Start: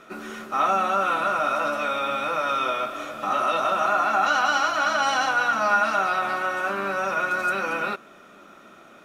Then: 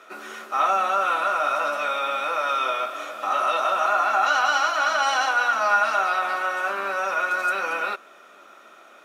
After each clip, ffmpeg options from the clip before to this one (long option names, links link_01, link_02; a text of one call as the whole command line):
ffmpeg -i in.wav -af "highpass=480,volume=1dB" out.wav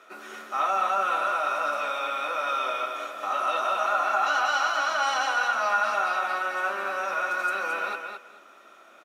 ffmpeg -i in.wav -af "aecho=1:1:217|434|651:0.501|0.0902|0.0162,volume=-4.5dB" out.wav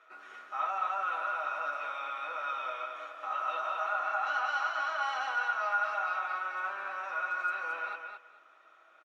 ffmpeg -i in.wav -af "bandpass=frequency=1400:width_type=q:width=0.7:csg=0,aecho=1:1:6.3:0.39,volume=-7.5dB" out.wav